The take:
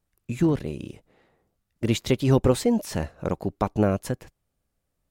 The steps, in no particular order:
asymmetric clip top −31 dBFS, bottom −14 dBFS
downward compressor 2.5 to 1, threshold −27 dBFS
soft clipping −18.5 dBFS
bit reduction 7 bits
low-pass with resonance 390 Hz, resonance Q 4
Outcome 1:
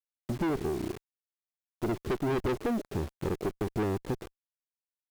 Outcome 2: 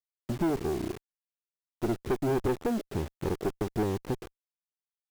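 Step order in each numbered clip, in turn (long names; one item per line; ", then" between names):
low-pass with resonance, then soft clipping, then bit reduction, then downward compressor, then asymmetric clip
downward compressor, then low-pass with resonance, then soft clipping, then bit reduction, then asymmetric clip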